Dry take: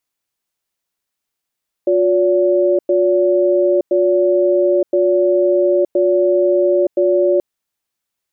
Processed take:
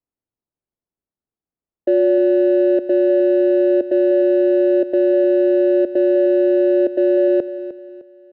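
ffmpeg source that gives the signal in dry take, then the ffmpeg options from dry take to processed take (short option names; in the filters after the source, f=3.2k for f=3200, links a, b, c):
-f lavfi -i "aevalsrc='0.211*(sin(2*PI*358*t)+sin(2*PI*572*t))*clip(min(mod(t,1.02),0.92-mod(t,1.02))/0.005,0,1)':d=5.53:s=44100"
-filter_complex "[0:a]acrossover=split=330|380[a][b][c];[c]adynamicsmooth=sensitivity=1:basefreq=690[d];[a][b][d]amix=inputs=3:normalize=0,aecho=1:1:305|610|915:0.224|0.0784|0.0274"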